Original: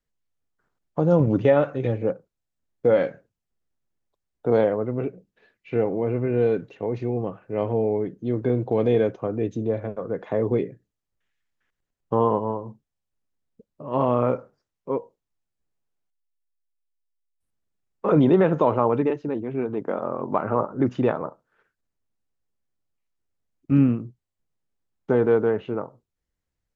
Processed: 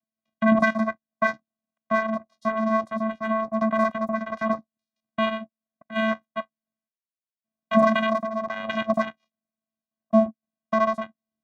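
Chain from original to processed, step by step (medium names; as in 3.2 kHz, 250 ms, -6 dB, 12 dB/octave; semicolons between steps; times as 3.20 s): vocoder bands 8, square 94.2 Hz; speed mistake 33 rpm record played at 78 rpm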